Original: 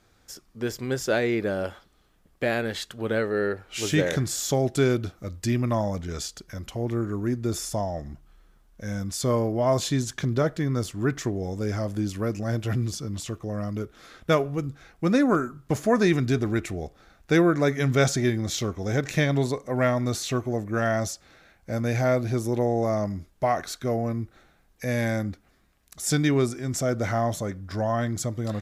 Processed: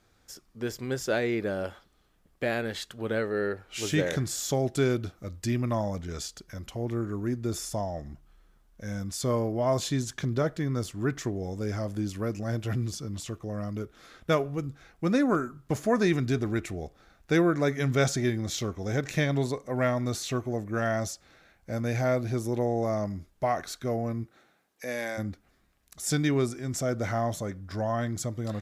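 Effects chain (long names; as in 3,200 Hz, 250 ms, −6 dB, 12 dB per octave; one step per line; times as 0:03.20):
0:24.23–0:25.17: high-pass filter 130 Hz → 500 Hz 12 dB per octave
level −3.5 dB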